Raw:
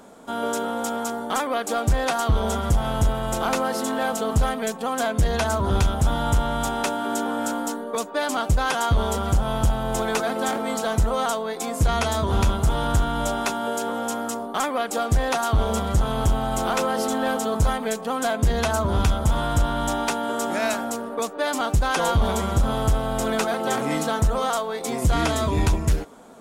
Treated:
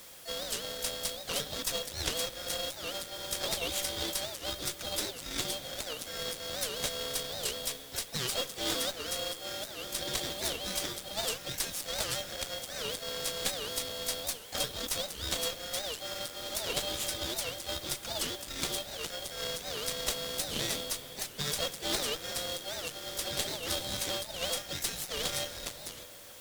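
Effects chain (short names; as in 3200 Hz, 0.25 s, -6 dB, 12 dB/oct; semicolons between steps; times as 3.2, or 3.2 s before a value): compressor 4:1, threshold -23 dBFS, peak gain reduction 7 dB; hard clip -23.5 dBFS, distortion -14 dB; rippled Chebyshev high-pass 1300 Hz, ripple 6 dB; ring modulator 1900 Hz; modulation noise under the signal 13 dB; harmoniser +5 st -7 dB; added noise white -57 dBFS; added harmonics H 6 -15 dB, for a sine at -19 dBFS; reverb RT60 5.6 s, pre-delay 48 ms, DRR 13.5 dB; record warp 78 rpm, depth 250 cents; gain +5.5 dB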